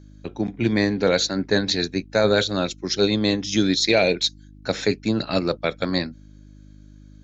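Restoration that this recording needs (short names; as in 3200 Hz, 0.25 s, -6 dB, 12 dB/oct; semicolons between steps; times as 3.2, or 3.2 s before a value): de-hum 51 Hz, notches 6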